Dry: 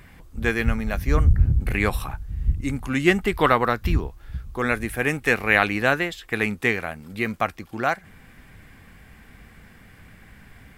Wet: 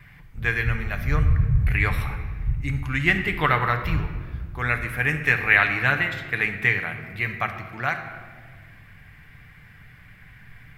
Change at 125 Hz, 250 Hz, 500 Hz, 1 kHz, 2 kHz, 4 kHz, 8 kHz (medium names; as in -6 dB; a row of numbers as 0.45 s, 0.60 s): +1.0 dB, -6.5 dB, -8.0 dB, -2.0 dB, +2.5 dB, -1.5 dB, no reading